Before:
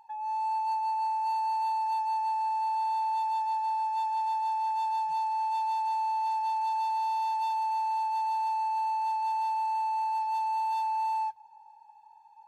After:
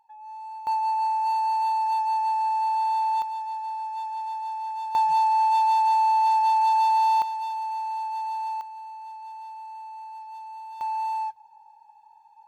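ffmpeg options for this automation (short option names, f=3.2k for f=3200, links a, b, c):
-af "asetnsamples=n=441:p=0,asendcmd='0.67 volume volume 5dB;3.22 volume volume -2dB;4.95 volume volume 9dB;7.22 volume volume -0.5dB;8.61 volume volume -10dB;10.81 volume volume 1.5dB',volume=-8dB"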